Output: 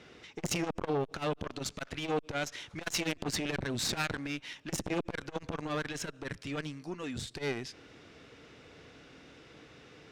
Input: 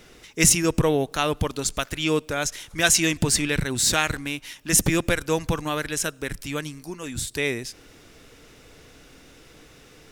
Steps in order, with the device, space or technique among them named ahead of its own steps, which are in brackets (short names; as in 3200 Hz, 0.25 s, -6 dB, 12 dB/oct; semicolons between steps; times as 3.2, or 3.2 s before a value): valve radio (BPF 84–4200 Hz; tube stage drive 23 dB, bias 0.6; core saturation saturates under 520 Hz)